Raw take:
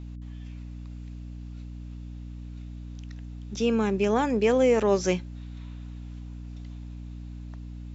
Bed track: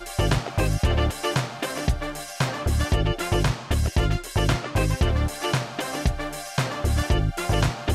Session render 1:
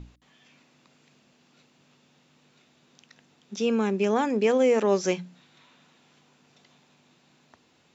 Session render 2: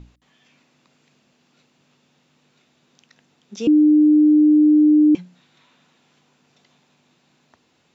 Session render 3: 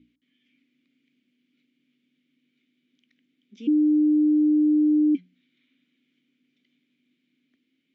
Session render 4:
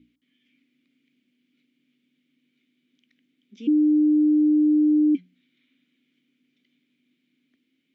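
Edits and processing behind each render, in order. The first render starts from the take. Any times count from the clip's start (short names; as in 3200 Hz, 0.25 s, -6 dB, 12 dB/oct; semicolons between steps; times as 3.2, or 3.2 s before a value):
notches 60/120/180/240/300 Hz
3.67–5.15 bleep 302 Hz -9.5 dBFS
vowel filter i
gain +1 dB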